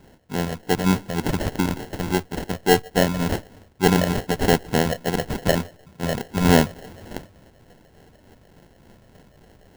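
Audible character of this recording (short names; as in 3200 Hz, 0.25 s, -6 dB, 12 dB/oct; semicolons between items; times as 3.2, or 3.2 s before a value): phasing stages 6, 3.4 Hz, lowest notch 320–1800 Hz; aliases and images of a low sample rate 1200 Hz, jitter 0%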